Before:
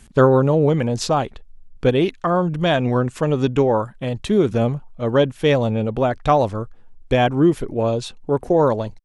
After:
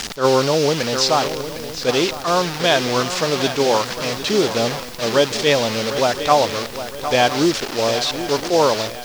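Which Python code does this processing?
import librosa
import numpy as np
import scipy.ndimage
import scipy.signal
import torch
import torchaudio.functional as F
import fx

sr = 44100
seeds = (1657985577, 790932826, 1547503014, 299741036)

p1 = fx.delta_mod(x, sr, bps=64000, step_db=-21.5)
p2 = fx.lowpass_res(p1, sr, hz=5200.0, q=2.2)
p3 = fx.low_shelf(p2, sr, hz=140.0, db=-7.5)
p4 = fx.quant_dither(p3, sr, seeds[0], bits=6, dither='triangular')
p5 = p3 + (p4 * 10.0 ** (-6.0 / 20.0))
p6 = fx.low_shelf(p5, sr, hz=320.0, db=-9.0)
p7 = p6 + fx.echo_swing(p6, sr, ms=1010, ratio=3, feedback_pct=38, wet_db=-11.5, dry=0)
y = fx.attack_slew(p7, sr, db_per_s=240.0)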